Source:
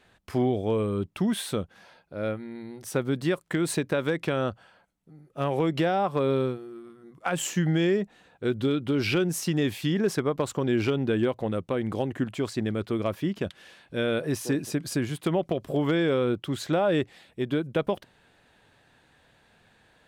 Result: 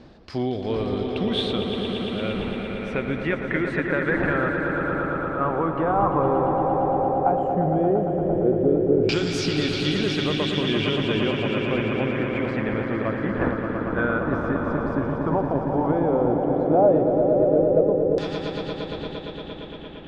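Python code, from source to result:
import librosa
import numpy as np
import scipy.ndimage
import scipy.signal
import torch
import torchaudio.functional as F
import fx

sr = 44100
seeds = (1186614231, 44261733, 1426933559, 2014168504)

y = fx.dmg_wind(x, sr, seeds[0], corner_hz=400.0, level_db=-38.0)
y = fx.echo_swell(y, sr, ms=115, loudest=5, wet_db=-8.0)
y = fx.filter_lfo_lowpass(y, sr, shape='saw_down', hz=0.11, low_hz=500.0, high_hz=5100.0, q=3.8)
y = F.gain(torch.from_numpy(y), -1.5).numpy()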